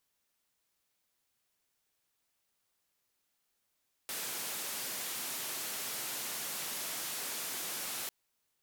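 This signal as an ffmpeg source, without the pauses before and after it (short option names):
-f lavfi -i "anoisesrc=c=white:d=4:r=44100:seed=1,highpass=f=160,lowpass=f=16000,volume=-32.7dB"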